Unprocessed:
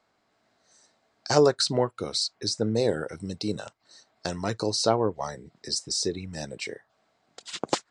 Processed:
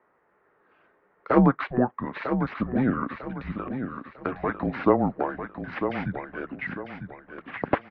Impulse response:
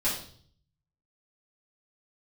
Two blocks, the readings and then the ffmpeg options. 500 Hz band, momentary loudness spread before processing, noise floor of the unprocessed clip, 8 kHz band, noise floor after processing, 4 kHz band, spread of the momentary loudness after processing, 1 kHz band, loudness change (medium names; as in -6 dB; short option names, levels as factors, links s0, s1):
-2.0 dB, 15 LU, -72 dBFS, under -40 dB, -67 dBFS, under -20 dB, 14 LU, +3.5 dB, 0.0 dB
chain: -filter_complex "[0:a]tiltshelf=f=970:g=-4.5,acrusher=samples=4:mix=1:aa=0.000001,asplit=2[s0][s1];[s1]aecho=0:1:949|1898|2847|3796:0.398|0.131|0.0434|0.0143[s2];[s0][s2]amix=inputs=2:normalize=0,highpass=f=420:t=q:w=0.5412,highpass=f=420:t=q:w=1.307,lowpass=f=2200:t=q:w=0.5176,lowpass=f=2200:t=q:w=0.7071,lowpass=f=2200:t=q:w=1.932,afreqshift=-250,volume=2"